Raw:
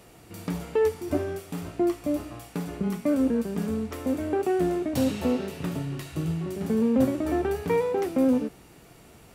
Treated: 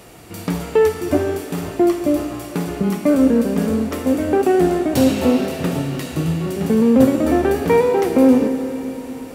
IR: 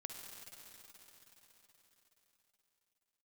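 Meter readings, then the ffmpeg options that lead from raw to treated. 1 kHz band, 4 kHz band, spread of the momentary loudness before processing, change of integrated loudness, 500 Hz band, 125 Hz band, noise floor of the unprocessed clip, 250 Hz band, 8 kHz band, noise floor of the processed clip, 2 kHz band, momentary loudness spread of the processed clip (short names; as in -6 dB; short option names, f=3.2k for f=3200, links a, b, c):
+10.5 dB, +10.5 dB, 11 LU, +9.5 dB, +9.5 dB, +8.5 dB, -52 dBFS, +9.5 dB, +10.5 dB, -33 dBFS, +10.5 dB, 11 LU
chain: -filter_complex "[0:a]asplit=2[a][b];[1:a]atrim=start_sample=2205,lowshelf=f=160:g=-6.5[c];[b][c]afir=irnorm=-1:irlink=0,volume=4dB[d];[a][d]amix=inputs=2:normalize=0,volume=4.5dB"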